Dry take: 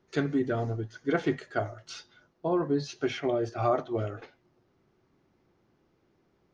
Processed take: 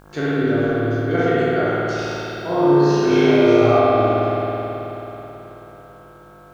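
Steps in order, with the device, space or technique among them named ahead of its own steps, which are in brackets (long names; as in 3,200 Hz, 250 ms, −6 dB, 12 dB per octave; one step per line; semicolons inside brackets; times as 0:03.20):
peak hold with a decay on every bin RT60 0.91 s
video cassette with head-switching buzz (hum with harmonics 50 Hz, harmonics 33, −48 dBFS −3 dB per octave; white noise bed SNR 36 dB)
0:01.95–0:03.79: flutter between parallel walls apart 5.9 metres, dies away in 1.2 s
spring reverb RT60 3.7 s, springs 54 ms, chirp 45 ms, DRR −7 dB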